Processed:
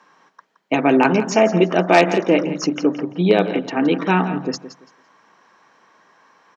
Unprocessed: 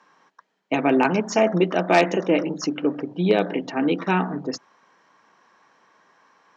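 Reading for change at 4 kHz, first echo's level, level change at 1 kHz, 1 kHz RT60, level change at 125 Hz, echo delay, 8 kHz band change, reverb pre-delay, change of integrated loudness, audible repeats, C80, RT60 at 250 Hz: +4.0 dB, −13.0 dB, +4.0 dB, no reverb audible, +4.5 dB, 169 ms, can't be measured, no reverb audible, +4.0 dB, 2, no reverb audible, no reverb audible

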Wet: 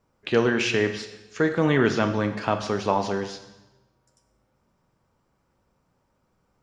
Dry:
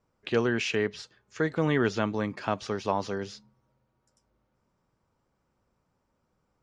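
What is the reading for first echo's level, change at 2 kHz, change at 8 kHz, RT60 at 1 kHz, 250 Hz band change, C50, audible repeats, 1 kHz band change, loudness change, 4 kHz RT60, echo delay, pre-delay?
no echo audible, +5.5 dB, can't be measured, 1.0 s, +5.0 dB, 9.5 dB, no echo audible, +5.5 dB, +5.0 dB, 0.95 s, no echo audible, 12 ms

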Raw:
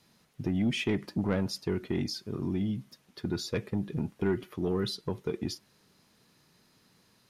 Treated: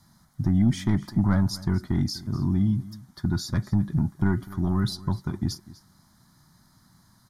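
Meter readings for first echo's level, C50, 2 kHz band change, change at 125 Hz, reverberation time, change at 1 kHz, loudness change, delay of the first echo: −19.0 dB, no reverb audible, +0.5 dB, +11.0 dB, no reverb audible, +6.0 dB, +6.5 dB, 248 ms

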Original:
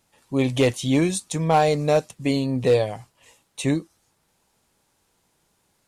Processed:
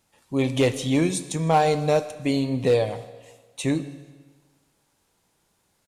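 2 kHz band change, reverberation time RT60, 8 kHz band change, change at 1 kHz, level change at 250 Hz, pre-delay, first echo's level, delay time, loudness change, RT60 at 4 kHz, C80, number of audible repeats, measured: −1.0 dB, 1.4 s, −1.0 dB, −0.5 dB, −1.0 dB, 7 ms, −22.5 dB, 157 ms, −1.0 dB, 1.3 s, 14.5 dB, 1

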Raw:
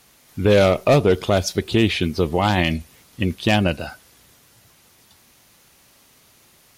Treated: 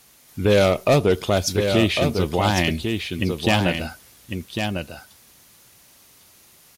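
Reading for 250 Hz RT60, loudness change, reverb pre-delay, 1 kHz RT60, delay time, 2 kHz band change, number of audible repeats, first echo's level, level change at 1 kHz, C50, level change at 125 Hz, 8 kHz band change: no reverb audible, −1.5 dB, no reverb audible, no reverb audible, 1,101 ms, 0.0 dB, 1, −6.0 dB, −1.0 dB, no reverb audible, −1.0 dB, +2.5 dB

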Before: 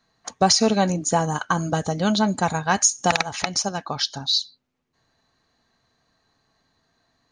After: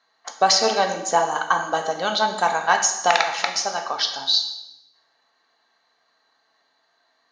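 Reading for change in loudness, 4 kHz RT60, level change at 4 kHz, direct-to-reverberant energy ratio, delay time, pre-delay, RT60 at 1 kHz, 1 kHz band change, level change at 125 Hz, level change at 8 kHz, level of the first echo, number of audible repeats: +1.0 dB, 0.80 s, +2.0 dB, 4.0 dB, no echo audible, 11 ms, 0.90 s, +3.5 dB, −16.5 dB, −2.0 dB, no echo audible, no echo audible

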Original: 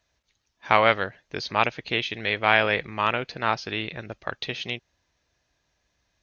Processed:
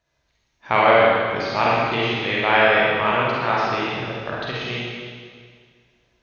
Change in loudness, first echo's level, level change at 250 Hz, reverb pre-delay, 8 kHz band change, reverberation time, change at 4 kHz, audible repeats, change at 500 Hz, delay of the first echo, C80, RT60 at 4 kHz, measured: +5.5 dB, no echo audible, +7.0 dB, 35 ms, can't be measured, 1.9 s, +3.0 dB, no echo audible, +8.0 dB, no echo audible, −1.5 dB, 1.9 s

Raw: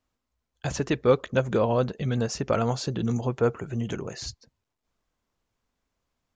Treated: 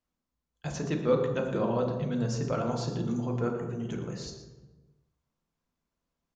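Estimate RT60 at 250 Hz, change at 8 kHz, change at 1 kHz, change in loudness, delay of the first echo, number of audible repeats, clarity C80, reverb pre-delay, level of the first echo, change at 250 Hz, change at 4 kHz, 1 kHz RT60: 1.5 s, −6.5 dB, −5.0 dB, −4.0 dB, 116 ms, 1, 6.5 dB, 3 ms, −12.0 dB, −2.0 dB, −7.0 dB, 1.1 s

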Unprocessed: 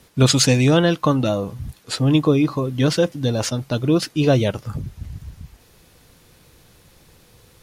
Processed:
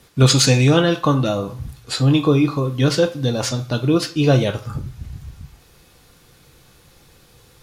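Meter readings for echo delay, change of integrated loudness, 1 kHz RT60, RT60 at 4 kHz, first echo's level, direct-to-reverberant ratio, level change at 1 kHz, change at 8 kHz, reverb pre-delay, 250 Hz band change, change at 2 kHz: no echo audible, +1.0 dB, 0.40 s, 0.55 s, no echo audible, 4.0 dB, +1.5 dB, +1.0 dB, 3 ms, +0.5 dB, +1.5 dB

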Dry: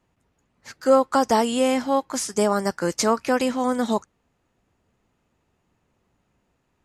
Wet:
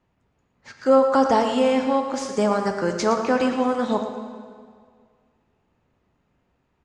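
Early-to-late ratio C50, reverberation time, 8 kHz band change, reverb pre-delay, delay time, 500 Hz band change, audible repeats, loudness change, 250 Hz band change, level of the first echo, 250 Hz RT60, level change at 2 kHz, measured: 5.5 dB, 2.0 s, −8.0 dB, 13 ms, 114 ms, +1.5 dB, 1, +1.0 dB, +1.0 dB, −9.5 dB, 2.0 s, +0.5 dB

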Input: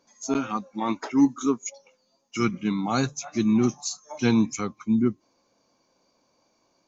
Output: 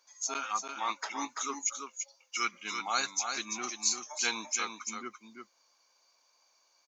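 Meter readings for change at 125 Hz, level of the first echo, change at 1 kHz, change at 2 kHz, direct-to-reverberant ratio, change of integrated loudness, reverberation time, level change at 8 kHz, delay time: below −30 dB, −6.0 dB, −2.5 dB, +1.0 dB, no reverb audible, −8.0 dB, no reverb audible, can't be measured, 338 ms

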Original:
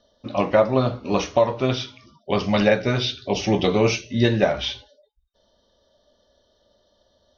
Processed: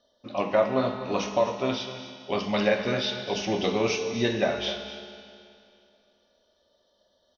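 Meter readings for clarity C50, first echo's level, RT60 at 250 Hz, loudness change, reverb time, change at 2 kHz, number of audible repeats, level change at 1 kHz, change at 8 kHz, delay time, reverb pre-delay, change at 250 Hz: 6.0 dB, −13.0 dB, 2.5 s, −5.5 dB, 2.5 s, −4.0 dB, 1, −4.5 dB, can't be measured, 253 ms, 5 ms, −6.5 dB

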